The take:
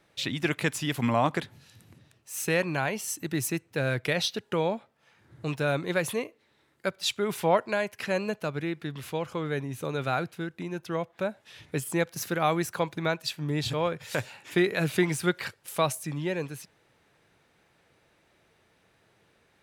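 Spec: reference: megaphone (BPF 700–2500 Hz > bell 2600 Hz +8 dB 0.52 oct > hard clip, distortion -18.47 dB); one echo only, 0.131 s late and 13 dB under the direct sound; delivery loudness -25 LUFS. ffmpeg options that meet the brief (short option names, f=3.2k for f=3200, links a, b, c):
-af "highpass=700,lowpass=2.5k,equalizer=f=2.6k:t=o:w=0.52:g=8,aecho=1:1:131:0.224,asoftclip=type=hard:threshold=-20dB,volume=8.5dB"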